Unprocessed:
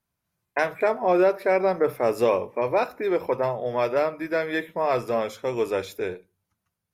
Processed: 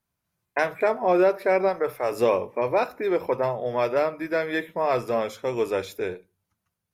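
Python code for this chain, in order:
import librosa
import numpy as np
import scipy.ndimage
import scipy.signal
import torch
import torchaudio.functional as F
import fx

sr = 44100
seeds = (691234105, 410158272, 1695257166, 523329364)

y = fx.peak_eq(x, sr, hz=210.0, db=fx.line((1.68, -8.0), (2.11, -14.0)), octaves=1.7, at=(1.68, 2.11), fade=0.02)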